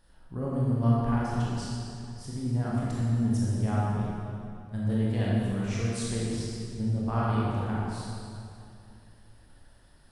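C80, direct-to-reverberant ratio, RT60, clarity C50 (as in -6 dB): -1.5 dB, -6.5 dB, 2.6 s, -4.0 dB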